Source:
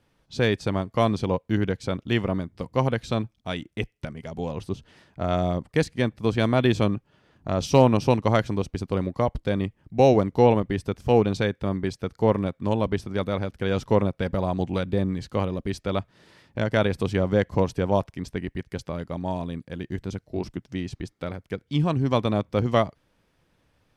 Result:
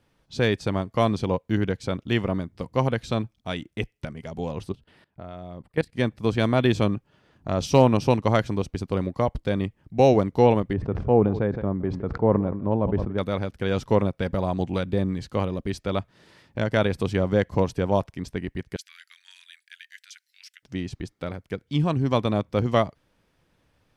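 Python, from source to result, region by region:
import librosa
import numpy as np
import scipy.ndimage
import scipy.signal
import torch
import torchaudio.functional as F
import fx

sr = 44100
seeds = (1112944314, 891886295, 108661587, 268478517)

y = fx.chain(x, sr, fx.peak_eq(hz=6400.0, db=-12.5, octaves=0.55),
    fx.level_steps(step_db=19), at=(4.72, 5.93))
y = fx.chain(y, sr, fx.lowpass(hz=1100.0, slope=12),
    fx.echo_single(ms=167, db=-20.5),
    fx.sustainer(db_per_s=62.0), at=(10.73, 13.18))
y = fx.chain(y, sr, fx.steep_highpass(hz=1600.0, slope=48),
    fx.high_shelf(hz=6000.0, db=5.0), at=(18.76, 20.63))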